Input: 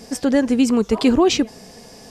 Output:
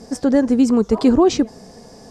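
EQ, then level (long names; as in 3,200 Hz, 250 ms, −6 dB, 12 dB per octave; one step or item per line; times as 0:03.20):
high-frequency loss of the air 50 metres
parametric band 2,700 Hz −11 dB 1.2 octaves
+2.0 dB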